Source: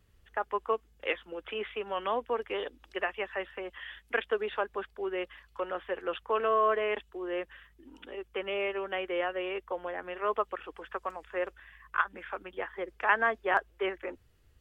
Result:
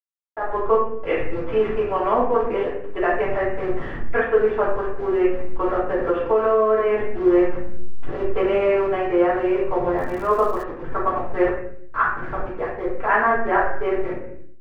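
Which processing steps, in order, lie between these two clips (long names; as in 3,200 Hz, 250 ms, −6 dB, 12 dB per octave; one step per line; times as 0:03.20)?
hold until the input has moved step −39 dBFS
convolution reverb RT60 0.65 s, pre-delay 3 ms, DRR −10 dB
0:05.80–0:07.26: downward compressor 3 to 1, threshold −23 dBFS, peak gain reduction 8.5 dB
low-pass filter 1,300 Hz 12 dB per octave
0:09.98–0:10.62: surface crackle 110 per second → 410 per second −35 dBFS
automatic gain control gain up to 14.5 dB
level −5.5 dB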